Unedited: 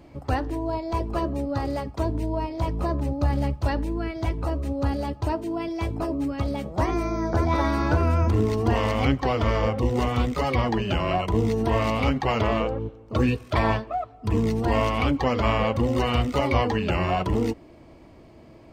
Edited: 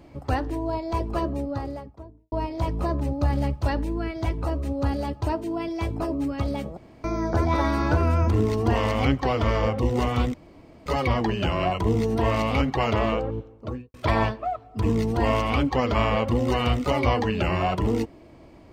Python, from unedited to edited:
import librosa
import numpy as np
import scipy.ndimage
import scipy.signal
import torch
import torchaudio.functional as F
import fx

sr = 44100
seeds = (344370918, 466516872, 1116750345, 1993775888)

y = fx.studio_fade_out(x, sr, start_s=1.17, length_s=1.15)
y = fx.studio_fade_out(y, sr, start_s=12.85, length_s=0.57)
y = fx.edit(y, sr, fx.room_tone_fill(start_s=6.77, length_s=0.27),
    fx.insert_room_tone(at_s=10.34, length_s=0.52), tone=tone)